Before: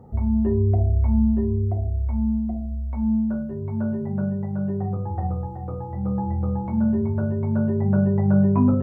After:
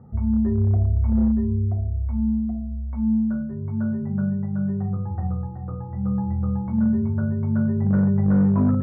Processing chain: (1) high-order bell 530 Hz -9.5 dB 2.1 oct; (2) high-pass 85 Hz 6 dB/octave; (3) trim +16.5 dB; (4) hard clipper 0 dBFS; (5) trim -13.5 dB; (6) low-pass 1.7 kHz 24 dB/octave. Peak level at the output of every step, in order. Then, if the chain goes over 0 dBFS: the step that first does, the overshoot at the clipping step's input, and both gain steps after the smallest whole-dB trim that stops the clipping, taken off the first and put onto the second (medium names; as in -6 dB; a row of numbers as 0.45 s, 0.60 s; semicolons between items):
-9.0 dBFS, -10.0 dBFS, +6.5 dBFS, 0.0 dBFS, -13.5 dBFS, -13.0 dBFS; step 3, 6.5 dB; step 3 +9.5 dB, step 5 -6.5 dB